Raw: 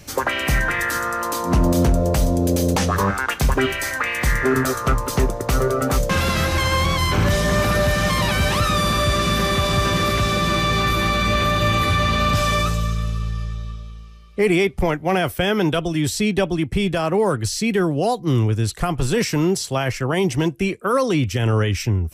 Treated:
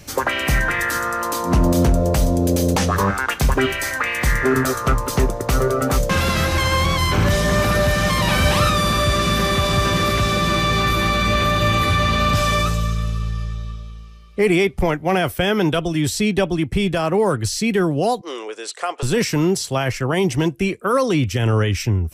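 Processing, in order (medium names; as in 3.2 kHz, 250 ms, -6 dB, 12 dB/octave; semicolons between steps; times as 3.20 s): 8.23–8.70 s: doubling 42 ms -3.5 dB; 18.21–19.03 s: elliptic band-pass 450–8700 Hz, stop band 50 dB; trim +1 dB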